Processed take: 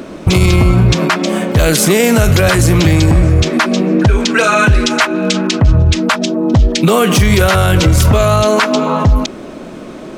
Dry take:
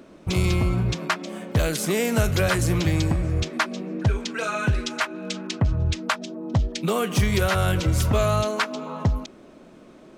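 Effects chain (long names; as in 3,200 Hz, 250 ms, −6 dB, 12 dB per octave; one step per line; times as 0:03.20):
boost into a limiter +20 dB
level −1 dB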